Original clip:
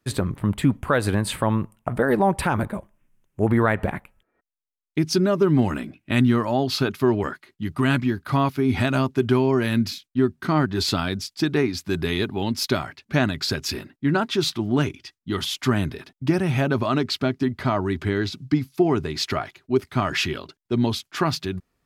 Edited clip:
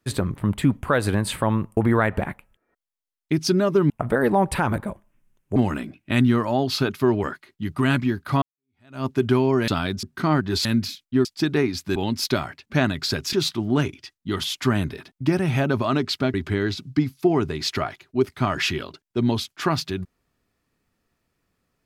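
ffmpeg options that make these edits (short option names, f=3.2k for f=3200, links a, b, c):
-filter_complex "[0:a]asplit=12[a][b][c][d][e][f][g][h][i][j][k][l];[a]atrim=end=1.772[m];[b]atrim=start=3.428:end=5.562[n];[c]atrim=start=1.768:end=3.432[o];[d]atrim=start=5.558:end=8.42,asetpts=PTS-STARTPTS,afade=t=out:st=2.858:d=0.004:c=hsin[p];[e]atrim=start=8.42:end=9.682,asetpts=PTS-STARTPTS,afade=t=in:d=0.64:c=exp[q];[f]atrim=start=10.898:end=11.252[r];[g]atrim=start=10.278:end=10.902[s];[h]atrim=start=9.678:end=10.282[t];[i]atrim=start=11.248:end=11.962[u];[j]atrim=start=12.348:end=13.722[v];[k]atrim=start=14.338:end=17.352[w];[l]atrim=start=17.888[x];[m][n]acrossfade=d=0.004:c1=hsin:c2=hsin[y];[y][o]acrossfade=d=0.004:c1=hsin:c2=hsin[z];[p][q]concat=n=2:v=0:a=1[aa];[z][aa]acrossfade=d=0.004:c1=hsin:c2=hsin[ab];[ab][r]acrossfade=d=0.004:c1=hsin:c2=hsin[ac];[ac][s]acrossfade=d=0.004:c1=hsin:c2=hsin[ad];[ad][t]acrossfade=d=0.004:c1=hsin:c2=hsin[ae];[ae][u]acrossfade=d=0.004:c1=hsin:c2=hsin[af];[af][v]acrossfade=d=0.004:c1=hsin:c2=hsin[ag];[ag][w]acrossfade=d=0.004:c1=hsin:c2=hsin[ah];[ah][x]acrossfade=d=0.004:c1=hsin:c2=hsin"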